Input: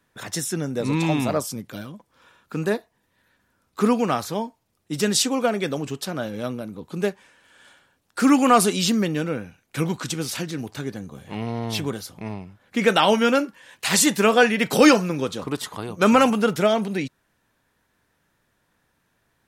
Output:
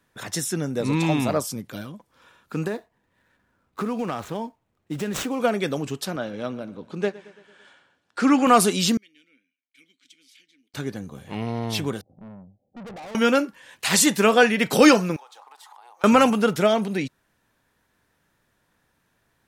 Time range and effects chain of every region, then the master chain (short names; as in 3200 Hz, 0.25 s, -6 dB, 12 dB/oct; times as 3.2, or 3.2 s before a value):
2.67–5.4 median filter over 9 samples + compressor, threshold -23 dBFS
6.16–8.47 HPF 190 Hz 6 dB/oct + air absorption 84 m + feedback echo 0.112 s, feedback 58%, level -19.5 dB
8.97–10.74 vowel filter i + differentiator + mismatched tape noise reduction decoder only
12.01–13.15 rippled Chebyshev low-pass 790 Hz, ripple 3 dB + tube stage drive 37 dB, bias 0.3 + upward expander, over -51 dBFS
15.16–16.04 G.711 law mismatch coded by mu + ladder high-pass 790 Hz, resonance 80% + compressor, threshold -44 dBFS
whole clip: dry